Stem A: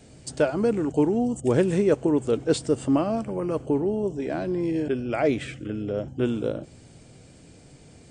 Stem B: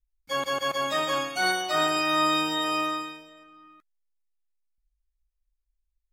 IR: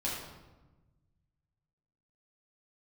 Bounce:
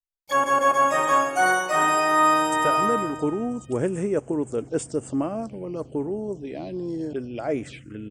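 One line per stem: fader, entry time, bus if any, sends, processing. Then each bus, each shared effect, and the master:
−3.5 dB, 2.25 s, no send, low-shelf EQ 420 Hz +3.5 dB
−1.0 dB, 0.00 s, send −6.5 dB, noise gate with hold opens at −59 dBFS; parametric band 560 Hz +8 dB 2.9 octaves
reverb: on, RT60 1.1 s, pre-delay 7 ms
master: spectral tilt +1.5 dB per octave; phaser swept by the level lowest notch 250 Hz, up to 4,100 Hz, full sweep at −24 dBFS

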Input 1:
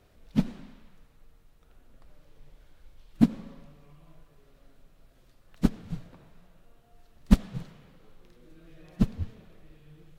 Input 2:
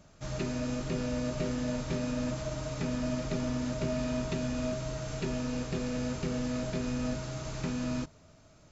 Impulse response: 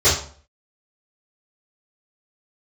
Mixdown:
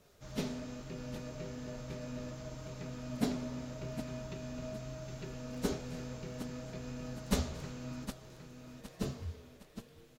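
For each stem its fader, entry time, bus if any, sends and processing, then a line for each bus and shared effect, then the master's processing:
−0.5 dB, 0.00 s, send −21 dB, echo send −9 dB, bass and treble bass −15 dB, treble +8 dB
−6.5 dB, 0.00 s, no send, echo send −8 dB, no processing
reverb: on, RT60 0.45 s, pre-delay 3 ms
echo: repeating echo 763 ms, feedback 39%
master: flanger 1 Hz, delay 6.1 ms, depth 6.9 ms, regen +86%

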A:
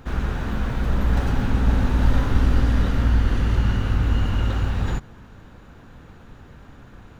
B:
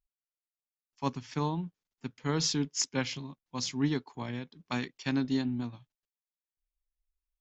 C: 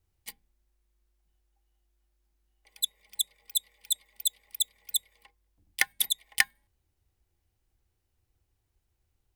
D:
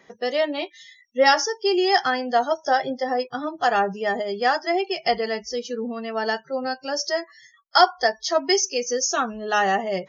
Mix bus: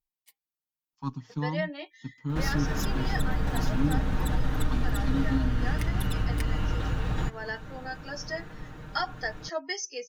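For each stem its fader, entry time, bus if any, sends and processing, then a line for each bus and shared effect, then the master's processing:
+1.0 dB, 2.30 s, bus A, no send, no processing
−6.5 dB, 0.00 s, no bus, no send, one-sided soft clipper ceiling −28 dBFS; graphic EQ with 10 bands 125 Hz +5 dB, 250 Hz +9 dB, 500 Hz −10 dB, 1,000 Hz +9 dB, 2,000 Hz −11 dB, 8,000 Hz −9 dB, 16,000 Hz +11 dB
−17.0 dB, 0.00 s, no bus, no send, high-pass filter 1,400 Hz 6 dB per octave
−14.5 dB, 1.20 s, bus A, no send, parametric band 1,800 Hz +9 dB 0.58 octaves
bus A: 0.0 dB, downward compressor 2.5 to 1, threshold −27 dBFS, peak gain reduction 11.5 dB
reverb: not used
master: comb filter 6.5 ms, depth 59%

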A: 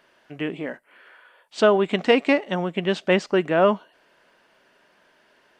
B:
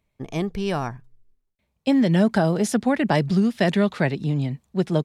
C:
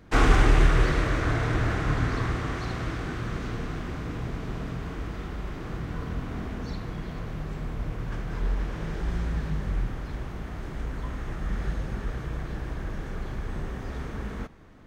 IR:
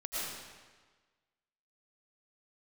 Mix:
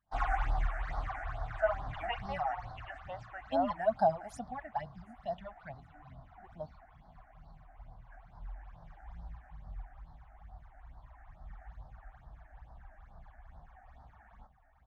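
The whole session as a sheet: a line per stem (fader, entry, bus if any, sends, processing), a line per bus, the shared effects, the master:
−10.0 dB, 0.00 s, no send, no echo send, high-pass filter 570 Hz
0:04.32 −5 dB → 0:04.71 −12 dB, 1.65 s, no send, echo send −23.5 dB, no processing
−4.5 dB, 0.00 s, no send, echo send −7.5 dB, no processing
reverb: not used
echo: repeating echo 761 ms, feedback 55%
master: all-pass phaser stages 8, 2.3 Hz, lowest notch 130–2,600 Hz; low shelf with overshoot 550 Hz −10.5 dB, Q 3; every bin expanded away from the loudest bin 1.5 to 1

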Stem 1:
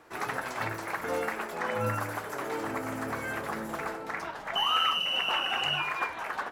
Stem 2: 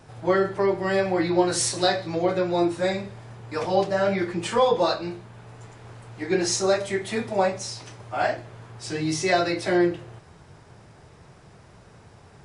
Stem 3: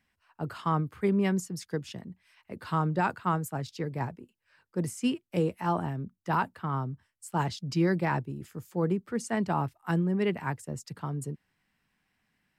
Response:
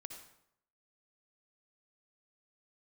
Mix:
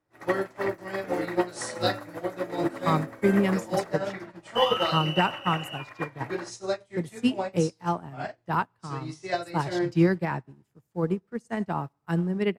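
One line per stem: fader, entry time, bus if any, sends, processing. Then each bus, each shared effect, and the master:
+2.0 dB, 0.00 s, no send, hollow resonant body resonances 300/560/1,900 Hz, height 12 dB, ringing for 45 ms
−1.5 dB, 0.00 s, no send, no processing
−3.5 dB, 2.20 s, send −7 dB, automatic gain control gain up to 8 dB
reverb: on, RT60 0.75 s, pre-delay 52 ms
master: expander for the loud parts 2.5 to 1, over −37 dBFS

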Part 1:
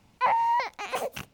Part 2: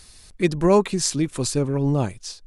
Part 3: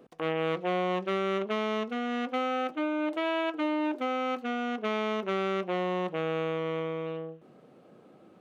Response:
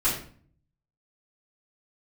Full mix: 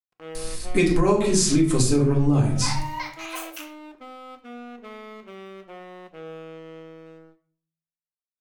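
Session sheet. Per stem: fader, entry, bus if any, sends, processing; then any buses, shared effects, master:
−5.0 dB, 2.40 s, bus A, send −6.5 dB, Bessel high-pass filter 1,700 Hz, order 2
+2.0 dB, 0.35 s, bus A, send −5 dB, no processing
−4.0 dB, 0.00 s, no bus, send −18.5 dB, tuned comb filter 240 Hz, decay 0.99 s, mix 60%; dead-zone distortion −51 dBFS
bus A: 0.0 dB, high-shelf EQ 5,800 Hz +12 dB; downward compressor, threshold −19 dBFS, peak gain reduction 9.5 dB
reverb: on, RT60 0.45 s, pre-delay 3 ms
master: downward compressor 12 to 1, threshold −15 dBFS, peak gain reduction 14.5 dB

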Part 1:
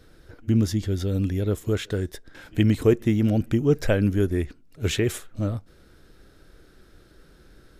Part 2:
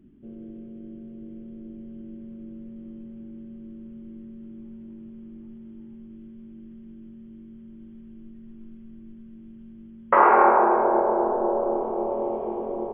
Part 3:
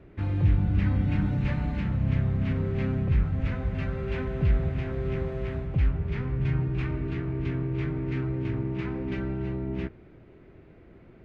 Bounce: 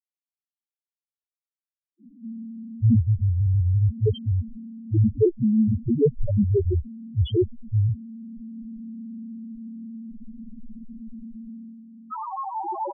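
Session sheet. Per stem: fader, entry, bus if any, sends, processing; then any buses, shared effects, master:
0.0 dB, 2.35 s, no bus, no send, leveller curve on the samples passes 1
+2.0 dB, 2.00 s, bus A, no send, high-shelf EQ 2,200 Hz +9 dB
muted
bus A: 0.0 dB, high-shelf EQ 2,100 Hz +6 dB; downward compressor 12 to 1, threshold −19 dBFS, peak gain reduction 12.5 dB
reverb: not used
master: automatic gain control gain up to 11.5 dB; spectral peaks only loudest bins 1

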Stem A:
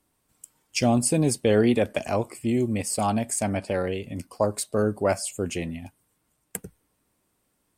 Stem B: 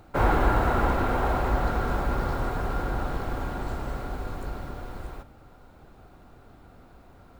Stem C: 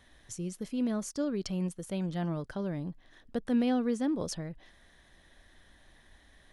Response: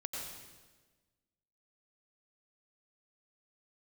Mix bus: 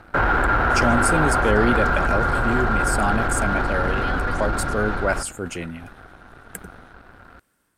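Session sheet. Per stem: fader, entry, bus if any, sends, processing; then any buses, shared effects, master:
−0.5 dB, 0.00 s, no send, transient designer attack 0 dB, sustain −4 dB
+2.5 dB, 0.00 s, no send, low-pass filter 4,900 Hz 24 dB per octave; leveller curve on the samples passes 2; downward compressor, threshold −22 dBFS, peak gain reduction 8.5 dB
−8.0 dB, 0.40 s, no send, ceiling on every frequency bin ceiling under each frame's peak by 21 dB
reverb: not used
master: parametric band 1,500 Hz +12 dB 0.54 octaves; transient designer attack −3 dB, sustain +3 dB

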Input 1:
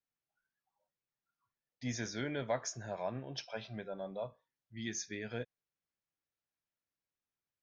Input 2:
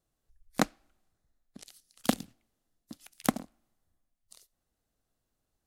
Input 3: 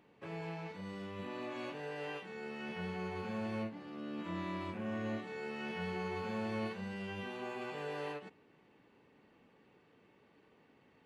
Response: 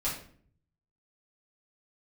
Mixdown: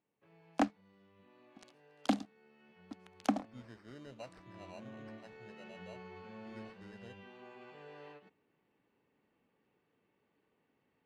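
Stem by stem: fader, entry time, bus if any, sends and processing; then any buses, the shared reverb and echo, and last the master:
−13.0 dB, 1.70 s, no send, high-shelf EQ 2,500 Hz −9.5 dB; decimation without filtering 13×
−6.5 dB, 0.00 s, no send, Chebyshev high-pass with heavy ripple 200 Hz, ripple 9 dB; leveller curve on the samples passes 3
0:04.40 −21 dB → 0:04.62 −11.5 dB, 0.00 s, no send, no processing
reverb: not used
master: low-pass filter 5,200 Hz 12 dB per octave

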